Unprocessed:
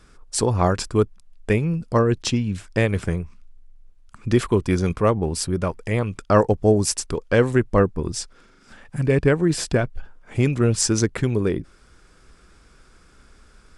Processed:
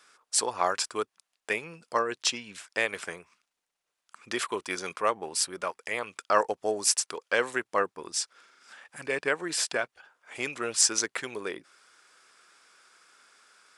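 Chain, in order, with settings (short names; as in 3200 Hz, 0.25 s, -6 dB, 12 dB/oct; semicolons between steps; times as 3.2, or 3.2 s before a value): Bessel high-pass 1000 Hz, order 2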